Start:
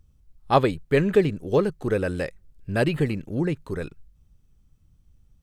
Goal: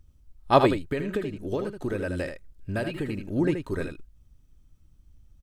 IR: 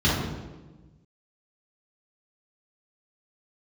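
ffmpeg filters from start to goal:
-filter_complex "[0:a]aecho=1:1:3.2:0.33,asettb=1/sr,asplit=3[link_01][link_02][link_03];[link_01]atrim=end=0.874[link_04];[link_02]atrim=start=0.87:end=3.36,asetpts=PTS-STARTPTS,afade=type=in:duration=0.004:curve=qsin,afade=type=out:start_time=2.486:duration=0.004:curve=qsin,acompressor=threshold=-26dB:ratio=10[link_05];[link_03]atrim=start=3.356[link_06];[link_04][link_05]acrossfade=duration=0.004:curve1=hsin:curve2=qsin[link_07];[link_07][link_06]acrossfade=duration=0.004:curve1=qsin:curve2=hsin,aecho=1:1:78:0.422"

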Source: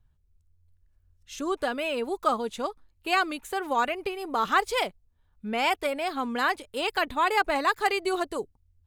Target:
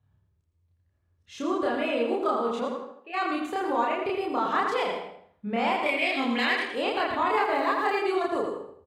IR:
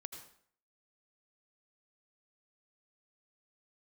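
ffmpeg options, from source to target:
-filter_complex "[0:a]highpass=frequency=82:width=0.5412,highpass=frequency=82:width=1.3066,aemphasis=mode=reproduction:type=75fm,bandreject=frequency=1500:width=19,asettb=1/sr,asplit=3[link_01][link_02][link_03];[link_01]atrim=end=5.864[link_04];[link_02]atrim=start=5.86:end=6.65,asetpts=PTS-STARTPTS,afade=type=in:duration=0.004:curve=qsin,afade=type=out:start_time=0.786:duration=0.004:curve=qsin,highshelf=frequency=1700:width_type=q:width=3:gain=8.5[link_05];[link_03]atrim=start=6.646[link_06];[link_04][link_05]acrossfade=duration=0.004:curve1=hsin:curve2=qsin[link_07];[link_07][link_06]acrossfade=duration=0.004:curve1=qsin:curve2=hsin,acompressor=threshold=-29dB:ratio=2.5,asplit=3[link_08][link_09][link_10];[link_08]afade=type=out:start_time=2.64:duration=0.02[link_11];[link_09]asplit=3[link_12][link_13][link_14];[link_12]bandpass=frequency=530:width_type=q:width=8,volume=0dB[link_15];[link_13]bandpass=frequency=1840:width_type=q:width=8,volume=-6dB[link_16];[link_14]bandpass=frequency=2480:width_type=q:width=8,volume=-9dB[link_17];[link_15][link_16][link_17]amix=inputs=3:normalize=0,afade=type=in:start_time=2.64:duration=0.02,afade=type=out:start_time=3.13:duration=0.02[link_18];[link_10]afade=type=in:start_time=3.13:duration=0.02[link_19];[link_11][link_18][link_19]amix=inputs=3:normalize=0,asettb=1/sr,asplit=3[link_20][link_21][link_22];[link_20]atrim=end=7.344[link_23];[link_21]atrim=start=7.34:end=7.98,asetpts=PTS-STARTPTS,afade=type=in:duration=0.004:curve=qsin,afade=type=out:start_time=0.636:duration=0.004:curve=qsin,aeval=exprs='val(0)*gte(abs(val(0)),0.00251)':channel_layout=same[link_24];[link_22]atrim=start=7.976[link_25];[link_23][link_24]acrossfade=duration=0.004:curve1=hsin:curve2=qsin[link_26];[link_26][link_25]acrossfade=duration=0.004:curve1=qsin:curve2=hsin,asplit=2[link_27][link_28];[link_28]adelay=82,lowpass=frequency=4900:poles=1,volume=-6dB,asplit=2[link_29][link_30];[link_30]adelay=82,lowpass=frequency=4900:poles=1,volume=0.29,asplit=2[link_31][link_32];[link_32]adelay=82,lowpass=frequency=4900:poles=1,volume=0.29,asplit=2[link_33][link_34];[link_34]adelay=82,lowpass=frequency=4900:poles=1,volume=0.29[link_35];[link_27][link_29][link_31][link_33][link_35]amix=inputs=5:normalize=0,asplit=2[link_36][link_37];[1:a]atrim=start_sample=2205,adelay=30[link_38];[link_37][link_38]afir=irnorm=-1:irlink=0,volume=6dB[link_39];[link_36][link_39]amix=inputs=2:normalize=0"

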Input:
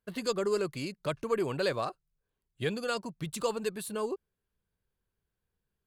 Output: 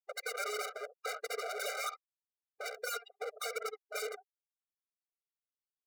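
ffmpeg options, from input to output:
ffmpeg -i in.wav -filter_complex "[0:a]highpass=frequency=53:poles=1,equalizer=frequency=1400:width_type=o:width=1.2:gain=13,aresample=11025,asoftclip=type=hard:threshold=-21.5dB,aresample=44100,lowshelf=frequency=170:width_type=q:width=1.5:gain=12,afftfilt=real='re*gte(hypot(re,im),0.158)':imag='im*gte(hypot(re,im),0.158)':win_size=1024:overlap=0.75,asplit=2[link_01][link_02];[link_02]aecho=0:1:54|68:0.141|0.158[link_03];[link_01][link_03]amix=inputs=2:normalize=0,acompressor=threshold=-33dB:ratio=20,aeval=exprs='0.0133*(abs(mod(val(0)/0.0133+3,4)-2)-1)':channel_layout=same,aeval=exprs='0.0133*(cos(1*acos(clip(val(0)/0.0133,-1,1)))-cos(1*PI/2))+0.00473*(cos(3*acos(clip(val(0)/0.0133,-1,1)))-cos(3*PI/2))+0.00133*(cos(4*acos(clip(val(0)/0.0133,-1,1)))-cos(4*PI/2))+0.000668*(cos(5*acos(clip(val(0)/0.0133,-1,1)))-cos(5*PI/2))+0.000531*(cos(8*acos(clip(val(0)/0.0133,-1,1)))-cos(8*PI/2))':channel_layout=same,asuperstop=centerf=3200:order=4:qfactor=4.3,afftfilt=real='re*eq(mod(floor(b*sr/1024/400),2),1)':imag='im*eq(mod(floor(b*sr/1024/400),2),1)':win_size=1024:overlap=0.75,volume=10dB" out.wav

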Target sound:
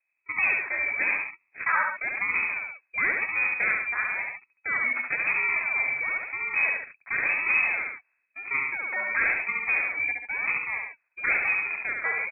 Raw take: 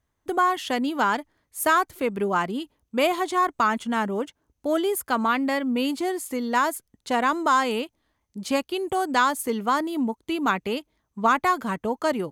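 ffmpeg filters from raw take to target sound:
ffmpeg -i in.wav -af "acrusher=samples=31:mix=1:aa=0.000001:lfo=1:lforange=31:lforate=0.97,lowpass=frequency=2200:width_type=q:width=0.5098,lowpass=frequency=2200:width_type=q:width=0.6013,lowpass=frequency=2200:width_type=q:width=0.9,lowpass=frequency=2200:width_type=q:width=2.563,afreqshift=-2600,aecho=1:1:70|92|138:0.668|0.126|0.398,volume=-5dB" out.wav

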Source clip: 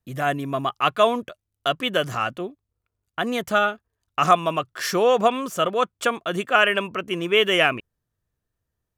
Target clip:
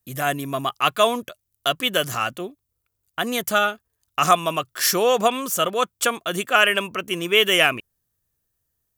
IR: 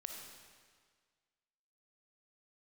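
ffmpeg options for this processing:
-af "aemphasis=mode=production:type=75kf,volume=-1dB"

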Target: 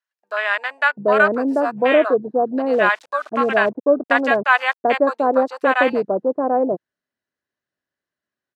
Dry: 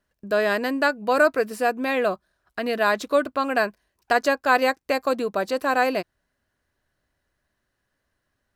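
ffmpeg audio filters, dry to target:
ffmpeg -i in.wav -filter_complex "[0:a]afwtdn=0.0447,asettb=1/sr,asplit=3[link_01][link_02][link_03];[link_01]atrim=end=2.734[link_04];[link_02]atrim=start=2.73:end=4.85,asetpts=PTS-STARTPTS,afade=type=in:duration=0.004:curve=qsin,afade=type=out:start_time=2.116:duration=0.004:curve=qsin,aeval=exprs='val(0)*gte(abs(val(0)),0.00562)':channel_layout=same[link_05];[link_03]atrim=start=4.846[link_06];[link_04][link_05]acrossfade=duration=0.004:curve1=hsin:curve2=qsin[link_07];[link_07][link_06]acrossfade=duration=0.004:curve1=qsin:curve2=hsin,highpass=180,lowpass=7600,acrossover=split=820[link_08][link_09];[link_08]adelay=740[link_10];[link_10][link_09]amix=inputs=2:normalize=0,volume=7dB" out.wav

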